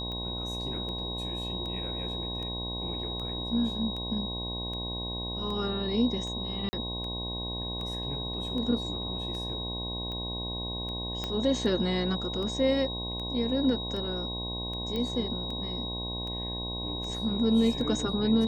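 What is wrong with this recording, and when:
buzz 60 Hz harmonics 18 -37 dBFS
tick 78 rpm -28 dBFS
tone 3800 Hz -35 dBFS
6.69–6.73 gap 40 ms
11.24 pop -18 dBFS
14.96 pop -21 dBFS

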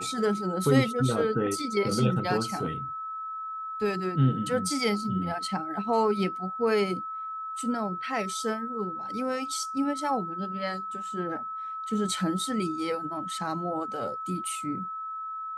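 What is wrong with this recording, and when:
tone 1300 Hz -33 dBFS

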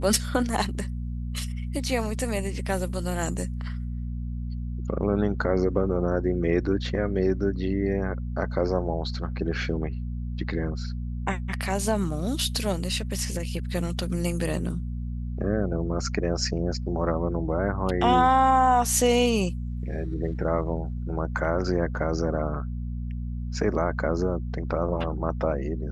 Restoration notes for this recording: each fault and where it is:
hum 60 Hz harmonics 4 -31 dBFS

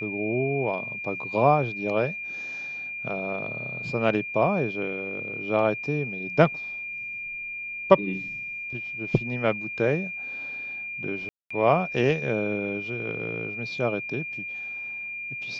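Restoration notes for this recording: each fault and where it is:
tone 2400 Hz -32 dBFS
11.29–11.51 gap 0.215 s

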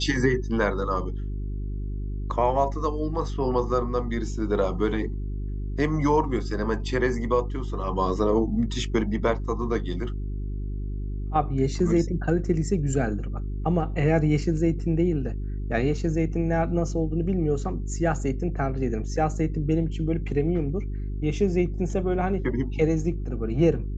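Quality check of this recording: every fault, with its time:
hum 50 Hz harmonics 8 -30 dBFS

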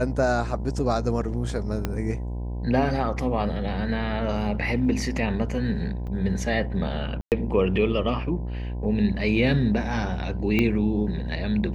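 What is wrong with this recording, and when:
buzz 60 Hz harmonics 17 -30 dBFS
1.85 pop -12 dBFS
6.07–6.08 gap 5.9 ms
7.21–7.32 gap 0.108 s
10.59 pop -11 dBFS

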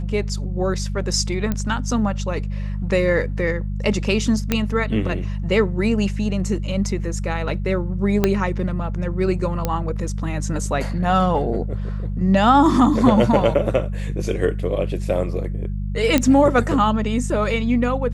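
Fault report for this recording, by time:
hum 50 Hz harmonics 4 -25 dBFS
1.52 pop -10 dBFS
4.52 pop -4 dBFS
8.24 pop -3 dBFS
9.65 pop -7 dBFS
16.18 pop -3 dBFS

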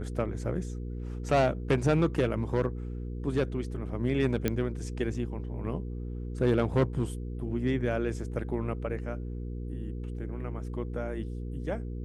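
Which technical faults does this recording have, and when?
hum 60 Hz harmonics 8 -36 dBFS
4.48 pop -13 dBFS

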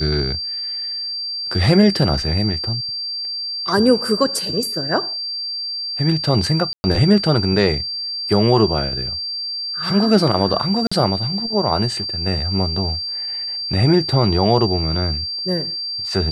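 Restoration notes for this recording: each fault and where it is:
tone 4700 Hz -23 dBFS
6.73–6.84 gap 0.11 s
10.87–10.91 gap 45 ms

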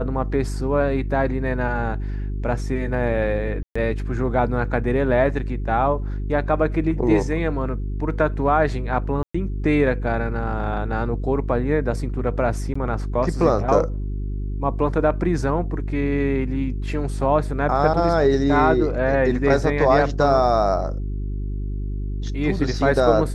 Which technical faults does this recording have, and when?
hum 50 Hz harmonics 8 -26 dBFS
3.63–3.75 gap 0.125 s
9.23–9.35 gap 0.115 s
12.74–12.76 gap 15 ms

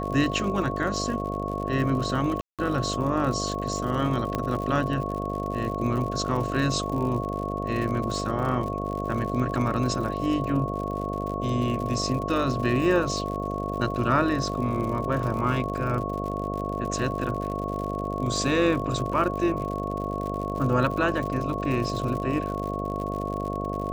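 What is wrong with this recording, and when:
buzz 50 Hz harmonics 14 -31 dBFS
crackle 89/s -32 dBFS
tone 1100 Hz -32 dBFS
2.41–2.59 gap 0.177 s
4.35 pop -13 dBFS

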